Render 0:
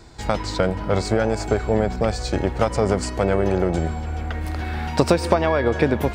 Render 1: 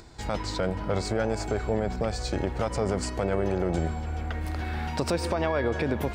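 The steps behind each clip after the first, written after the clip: peak limiter -12 dBFS, peak gain reduction 8 dB; upward compressor, threshold -43 dBFS; trim -4.5 dB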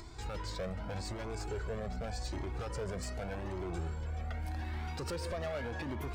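hard clipper -25.5 dBFS, distortion -9 dB; peak limiter -33 dBFS, peak gain reduction 7.5 dB; Shepard-style flanger rising 0.84 Hz; trim +3 dB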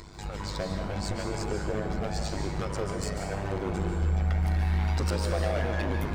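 level rider gain up to 3.5 dB; AM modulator 100 Hz, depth 85%; reverberation RT60 1.0 s, pre-delay 129 ms, DRR 3.5 dB; trim +7 dB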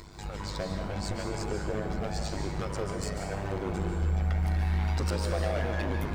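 crackle 550 per s -54 dBFS; trim -1.5 dB

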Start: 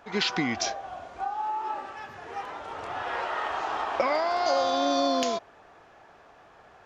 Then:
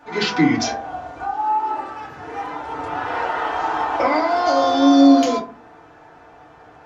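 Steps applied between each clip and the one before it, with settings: FDN reverb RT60 0.38 s, low-frequency decay 1.55×, high-frequency decay 0.45×, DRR -7 dB; trim -1 dB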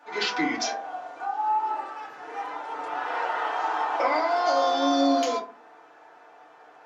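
high-pass 440 Hz 12 dB/octave; trim -4.5 dB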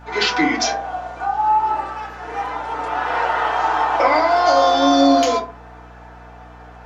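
hum 60 Hz, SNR 24 dB; trim +8.5 dB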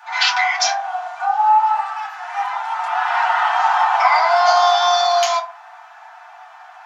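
steep high-pass 690 Hz 96 dB/octave; trim +3 dB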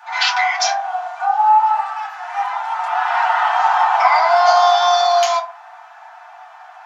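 bass shelf 500 Hz +9 dB; trim -1 dB

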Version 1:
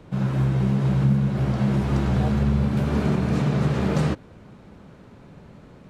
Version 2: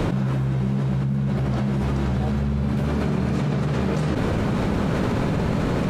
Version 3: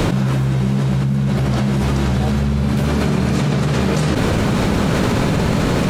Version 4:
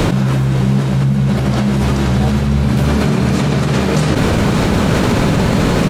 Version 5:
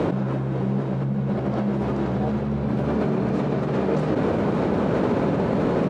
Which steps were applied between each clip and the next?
level flattener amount 100%; trim -6 dB
treble shelf 3 kHz +9.5 dB; trim +5.5 dB
delay 553 ms -11 dB; trim +3 dB
band-pass filter 460 Hz, Q 0.78; trim -4 dB

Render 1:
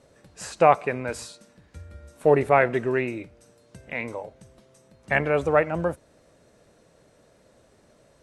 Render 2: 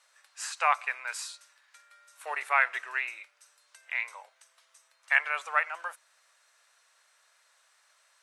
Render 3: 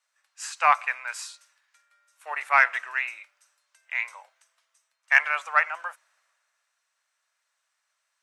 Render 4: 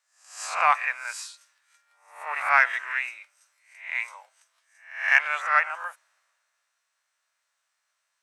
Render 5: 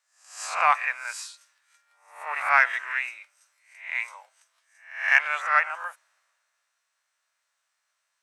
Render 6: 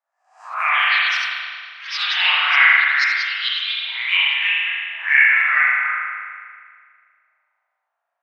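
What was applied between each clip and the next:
high-pass 1.1 kHz 24 dB/octave; trim +1 dB
fifteen-band graphic EQ 400 Hz -9 dB, 4 kHz -4 dB, 10 kHz -5 dB; in parallel at -6 dB: saturation -16.5 dBFS, distortion -15 dB; on the sum: three bands expanded up and down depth 40%
reverse spectral sustain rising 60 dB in 0.51 s; trim -2 dB
no audible change
auto-wah 730–2100 Hz, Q 4.2, up, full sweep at -22.5 dBFS; ever faster or slower copies 287 ms, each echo +5 st, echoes 3; spring tank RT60 1.9 s, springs 36 ms, chirp 70 ms, DRR -8 dB; trim +5 dB

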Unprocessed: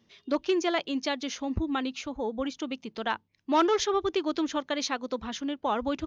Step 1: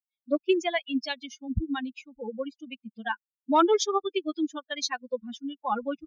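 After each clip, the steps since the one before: expander on every frequency bin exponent 3; trim +6 dB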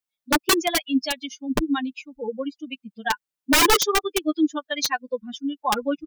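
integer overflow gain 18 dB; comb 6.7 ms, depth 38%; trim +5.5 dB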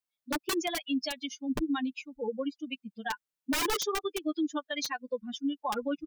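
peak limiter -20 dBFS, peak gain reduction 10 dB; trim -3.5 dB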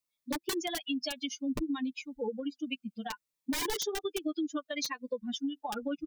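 compression, threshold -33 dBFS, peak gain reduction 7 dB; Shepard-style phaser falling 0.63 Hz; trim +3.5 dB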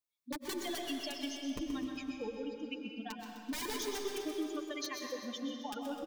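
feedback delay 128 ms, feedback 60%, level -9 dB; algorithmic reverb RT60 2.3 s, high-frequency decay 0.85×, pre-delay 80 ms, DRR 3 dB; trim -6.5 dB

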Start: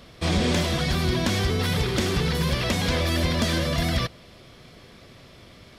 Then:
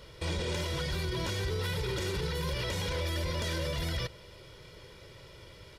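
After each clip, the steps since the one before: comb 2.1 ms, depth 73%; peak limiter -20.5 dBFS, peak gain reduction 10.5 dB; trim -4.5 dB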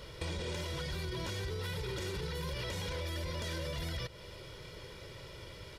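compression 4:1, threshold -39 dBFS, peak gain reduction 8.5 dB; trim +2.5 dB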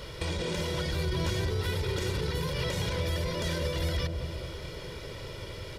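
in parallel at -4 dB: saturation -34 dBFS, distortion -17 dB; on the sum: feedback echo behind a low-pass 198 ms, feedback 56%, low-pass 670 Hz, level -3 dB; trim +2.5 dB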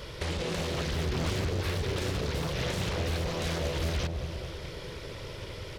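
loudspeaker Doppler distortion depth 0.86 ms

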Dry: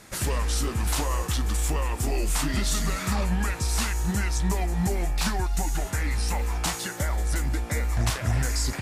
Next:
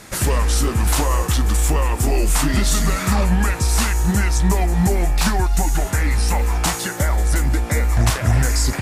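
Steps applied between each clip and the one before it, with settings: dynamic bell 3.9 kHz, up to -3 dB, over -43 dBFS, Q 0.72; trim +8.5 dB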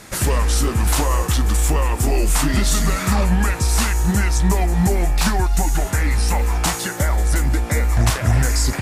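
no audible change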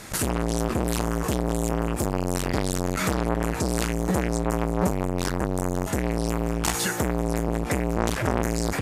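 transformer saturation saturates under 920 Hz

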